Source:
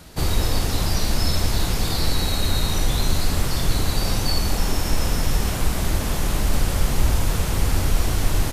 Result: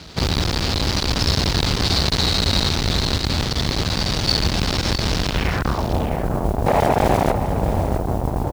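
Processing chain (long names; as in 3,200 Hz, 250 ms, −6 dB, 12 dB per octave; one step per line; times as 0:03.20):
each half-wave held at its own peak
high-pass filter 57 Hz
high-shelf EQ 5,300 Hz +9 dB
automatic gain control
low-pass filter sweep 4,400 Hz → 760 Hz, 0:05.26–0:05.87
noise that follows the level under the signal 26 dB
0:06.66–0:07.32: mid-hump overdrive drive 25 dB, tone 3,000 Hz, clips at −5 dBFS
single-tap delay 659 ms −11.5 dB
level −1 dB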